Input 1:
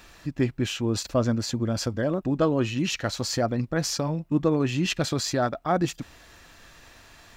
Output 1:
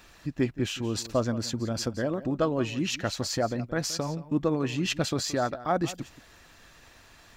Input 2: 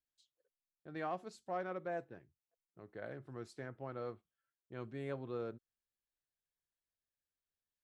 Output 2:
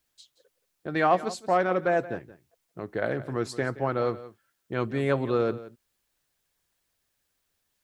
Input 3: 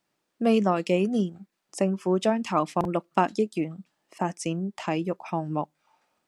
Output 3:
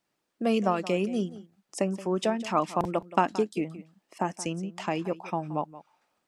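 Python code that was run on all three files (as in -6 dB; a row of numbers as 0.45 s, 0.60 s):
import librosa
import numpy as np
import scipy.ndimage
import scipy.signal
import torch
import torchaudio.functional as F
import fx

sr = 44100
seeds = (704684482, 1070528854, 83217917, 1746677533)

y = fx.hpss(x, sr, part='percussive', gain_db=4)
y = y + 10.0 ** (-16.5 / 20.0) * np.pad(y, (int(174 * sr / 1000.0), 0))[:len(y)]
y = y * 10.0 ** (-30 / 20.0) / np.sqrt(np.mean(np.square(y)))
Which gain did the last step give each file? -5.5 dB, +16.0 dB, -4.0 dB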